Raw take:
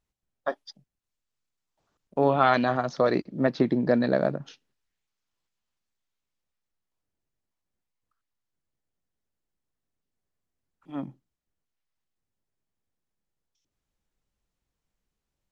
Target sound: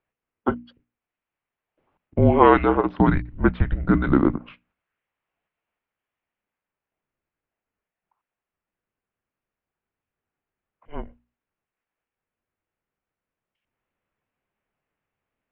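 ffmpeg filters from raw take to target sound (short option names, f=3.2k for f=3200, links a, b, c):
-af "highpass=f=330:t=q:w=0.5412,highpass=f=330:t=q:w=1.307,lowpass=f=3k:t=q:w=0.5176,lowpass=f=3k:t=q:w=0.7071,lowpass=f=3k:t=q:w=1.932,afreqshift=-310,bandreject=f=60:t=h:w=6,bandreject=f=120:t=h:w=6,bandreject=f=180:t=h:w=6,bandreject=f=240:t=h:w=6,bandreject=f=300:t=h:w=6,volume=7.5dB"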